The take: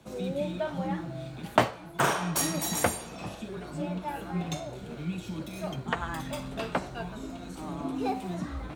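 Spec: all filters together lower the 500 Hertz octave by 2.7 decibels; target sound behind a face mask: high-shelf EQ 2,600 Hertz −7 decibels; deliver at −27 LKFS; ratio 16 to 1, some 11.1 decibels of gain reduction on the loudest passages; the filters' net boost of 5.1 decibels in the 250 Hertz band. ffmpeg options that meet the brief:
ffmpeg -i in.wav -af "equalizer=frequency=250:width_type=o:gain=8.5,equalizer=frequency=500:width_type=o:gain=-5.5,acompressor=threshold=-29dB:ratio=16,highshelf=frequency=2600:gain=-7,volume=8.5dB" out.wav

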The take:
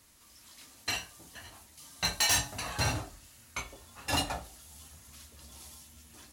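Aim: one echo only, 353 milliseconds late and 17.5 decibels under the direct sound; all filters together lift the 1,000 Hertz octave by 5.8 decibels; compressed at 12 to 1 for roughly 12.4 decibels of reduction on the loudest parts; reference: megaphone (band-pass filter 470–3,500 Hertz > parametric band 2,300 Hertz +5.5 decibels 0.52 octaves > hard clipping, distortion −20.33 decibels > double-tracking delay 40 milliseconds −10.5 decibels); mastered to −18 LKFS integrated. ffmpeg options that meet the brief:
ffmpeg -i in.wav -filter_complex "[0:a]equalizer=frequency=1000:width_type=o:gain=7.5,acompressor=threshold=-35dB:ratio=12,highpass=470,lowpass=3500,equalizer=frequency=2300:width_type=o:width=0.52:gain=5.5,aecho=1:1:353:0.133,asoftclip=type=hard:threshold=-29dB,asplit=2[link_01][link_02];[link_02]adelay=40,volume=-10.5dB[link_03];[link_01][link_03]amix=inputs=2:normalize=0,volume=24dB" out.wav

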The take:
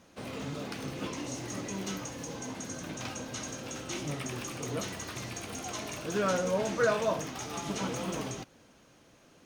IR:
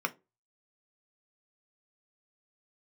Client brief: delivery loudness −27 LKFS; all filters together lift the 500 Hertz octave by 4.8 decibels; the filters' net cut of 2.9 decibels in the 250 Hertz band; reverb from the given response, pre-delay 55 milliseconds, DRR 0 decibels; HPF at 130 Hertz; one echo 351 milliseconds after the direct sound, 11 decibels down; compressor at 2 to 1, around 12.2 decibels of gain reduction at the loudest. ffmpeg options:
-filter_complex "[0:a]highpass=130,equalizer=frequency=250:width_type=o:gain=-5.5,equalizer=frequency=500:width_type=o:gain=7,acompressor=threshold=-41dB:ratio=2,aecho=1:1:351:0.282,asplit=2[link_01][link_02];[1:a]atrim=start_sample=2205,adelay=55[link_03];[link_02][link_03]afir=irnorm=-1:irlink=0,volume=-7.5dB[link_04];[link_01][link_04]amix=inputs=2:normalize=0,volume=10.5dB"

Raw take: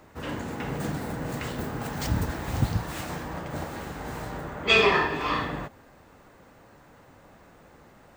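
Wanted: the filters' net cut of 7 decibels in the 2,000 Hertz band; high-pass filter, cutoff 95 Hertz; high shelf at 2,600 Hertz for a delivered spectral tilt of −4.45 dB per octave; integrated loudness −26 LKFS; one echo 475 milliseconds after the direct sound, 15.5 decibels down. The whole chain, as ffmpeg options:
ffmpeg -i in.wav -af "highpass=95,equalizer=frequency=2000:width_type=o:gain=-6.5,highshelf=frequency=2600:gain=-5,aecho=1:1:475:0.168,volume=5dB" out.wav

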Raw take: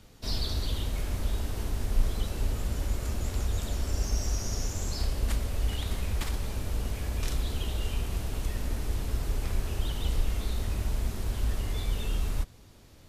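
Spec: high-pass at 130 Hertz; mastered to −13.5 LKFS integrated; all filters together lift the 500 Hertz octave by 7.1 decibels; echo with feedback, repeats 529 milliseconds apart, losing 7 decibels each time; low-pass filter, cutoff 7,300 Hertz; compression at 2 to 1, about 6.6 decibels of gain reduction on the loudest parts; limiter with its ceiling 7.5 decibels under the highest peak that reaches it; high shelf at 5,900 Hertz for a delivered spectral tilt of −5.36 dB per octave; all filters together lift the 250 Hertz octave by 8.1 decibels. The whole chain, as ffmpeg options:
ffmpeg -i in.wav -af "highpass=130,lowpass=7300,equalizer=frequency=250:width_type=o:gain=9,equalizer=frequency=500:width_type=o:gain=6,highshelf=frequency=5900:gain=-3.5,acompressor=threshold=-42dB:ratio=2,alimiter=level_in=11dB:limit=-24dB:level=0:latency=1,volume=-11dB,aecho=1:1:529|1058|1587|2116|2645:0.447|0.201|0.0905|0.0407|0.0183,volume=29.5dB" out.wav

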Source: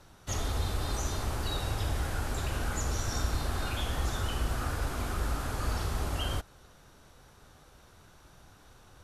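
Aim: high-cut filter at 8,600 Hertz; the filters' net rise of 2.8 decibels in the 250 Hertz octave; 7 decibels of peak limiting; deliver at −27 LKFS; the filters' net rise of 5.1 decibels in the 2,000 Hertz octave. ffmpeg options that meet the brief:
ffmpeg -i in.wav -af "lowpass=8600,equalizer=frequency=250:width_type=o:gain=3.5,equalizer=frequency=2000:width_type=o:gain=7,volume=8dB,alimiter=limit=-16.5dB:level=0:latency=1" out.wav

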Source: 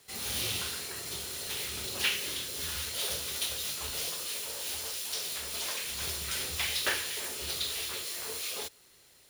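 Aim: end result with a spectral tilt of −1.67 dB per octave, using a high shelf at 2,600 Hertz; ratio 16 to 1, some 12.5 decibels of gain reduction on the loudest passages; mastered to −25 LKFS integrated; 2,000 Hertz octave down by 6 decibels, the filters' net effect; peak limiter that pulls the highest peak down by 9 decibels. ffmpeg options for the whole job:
ffmpeg -i in.wav -af "equalizer=frequency=2000:width_type=o:gain=-5,highshelf=frequency=2600:gain=-5.5,acompressor=threshold=-42dB:ratio=16,volume=22dB,alimiter=limit=-17.5dB:level=0:latency=1" out.wav

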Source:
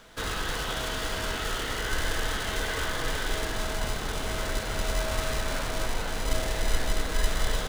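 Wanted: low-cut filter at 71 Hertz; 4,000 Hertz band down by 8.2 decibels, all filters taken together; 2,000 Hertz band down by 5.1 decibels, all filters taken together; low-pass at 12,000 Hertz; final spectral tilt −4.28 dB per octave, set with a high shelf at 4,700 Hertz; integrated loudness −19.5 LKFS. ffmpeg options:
ffmpeg -i in.wav -af "highpass=71,lowpass=12000,equalizer=frequency=2000:width_type=o:gain=-4.5,equalizer=frequency=4000:width_type=o:gain=-5,highshelf=frequency=4700:gain=-8.5,volume=15dB" out.wav

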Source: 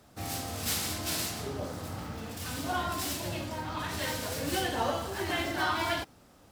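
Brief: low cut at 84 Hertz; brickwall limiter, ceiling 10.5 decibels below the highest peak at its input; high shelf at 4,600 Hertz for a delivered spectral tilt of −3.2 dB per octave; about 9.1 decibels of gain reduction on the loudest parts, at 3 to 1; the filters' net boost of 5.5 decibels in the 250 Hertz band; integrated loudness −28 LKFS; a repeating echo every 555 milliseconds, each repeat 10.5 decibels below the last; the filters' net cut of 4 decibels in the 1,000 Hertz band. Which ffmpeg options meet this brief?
ffmpeg -i in.wav -af "highpass=84,equalizer=frequency=250:width_type=o:gain=7.5,equalizer=frequency=1000:width_type=o:gain=-6.5,highshelf=frequency=4600:gain=8.5,acompressor=threshold=-35dB:ratio=3,alimiter=level_in=7dB:limit=-24dB:level=0:latency=1,volume=-7dB,aecho=1:1:555|1110|1665:0.299|0.0896|0.0269,volume=11dB" out.wav

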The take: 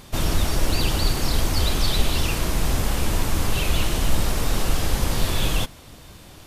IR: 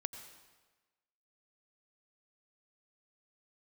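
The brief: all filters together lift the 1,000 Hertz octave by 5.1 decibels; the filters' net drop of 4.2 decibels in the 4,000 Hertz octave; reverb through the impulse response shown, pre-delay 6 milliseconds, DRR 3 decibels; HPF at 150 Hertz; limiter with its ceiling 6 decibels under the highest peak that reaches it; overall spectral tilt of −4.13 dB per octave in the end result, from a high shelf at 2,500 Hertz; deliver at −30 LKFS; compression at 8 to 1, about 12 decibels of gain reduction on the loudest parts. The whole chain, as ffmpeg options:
-filter_complex "[0:a]highpass=150,equalizer=frequency=1000:width_type=o:gain=7,highshelf=frequency=2500:gain=-3,equalizer=frequency=4000:width_type=o:gain=-3,acompressor=threshold=-36dB:ratio=8,alimiter=level_in=7dB:limit=-24dB:level=0:latency=1,volume=-7dB,asplit=2[link_01][link_02];[1:a]atrim=start_sample=2205,adelay=6[link_03];[link_02][link_03]afir=irnorm=-1:irlink=0,volume=-2dB[link_04];[link_01][link_04]amix=inputs=2:normalize=0,volume=9dB"

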